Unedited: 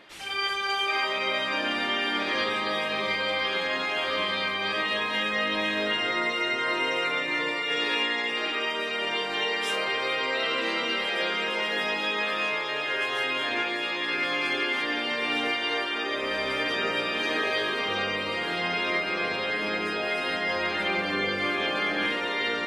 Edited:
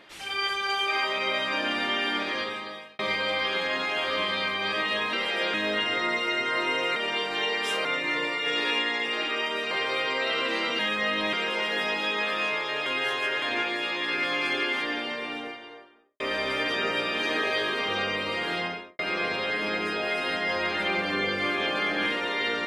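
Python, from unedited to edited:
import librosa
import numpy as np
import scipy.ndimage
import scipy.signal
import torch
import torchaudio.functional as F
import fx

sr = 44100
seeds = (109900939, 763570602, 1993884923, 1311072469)

y = fx.studio_fade_out(x, sr, start_s=14.64, length_s=1.56)
y = fx.studio_fade_out(y, sr, start_s=18.55, length_s=0.44)
y = fx.edit(y, sr, fx.fade_out_span(start_s=2.1, length_s=0.89),
    fx.swap(start_s=5.13, length_s=0.54, other_s=10.92, other_length_s=0.41),
    fx.move(start_s=8.95, length_s=0.89, to_s=7.09),
    fx.reverse_span(start_s=12.86, length_s=0.56), tone=tone)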